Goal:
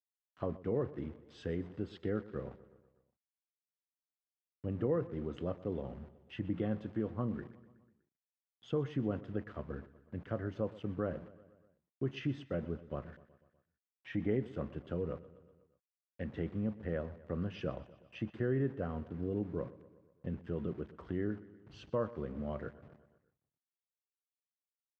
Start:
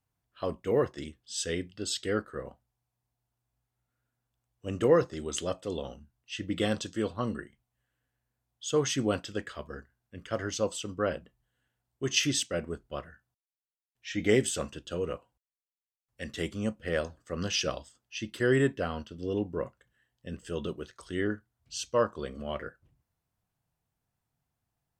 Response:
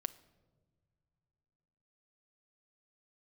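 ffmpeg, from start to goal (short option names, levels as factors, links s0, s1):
-filter_complex "[0:a]aemphasis=mode=reproduction:type=riaa,acompressor=threshold=0.0158:ratio=2.5,aeval=exprs='val(0)*gte(abs(val(0)),0.00282)':c=same,highpass=120,lowpass=2000,asplit=2[s0][s1];[s1]aecho=0:1:123|246|369|492|615:0.126|0.0755|0.0453|0.0272|0.0163[s2];[s0][s2]amix=inputs=2:normalize=0"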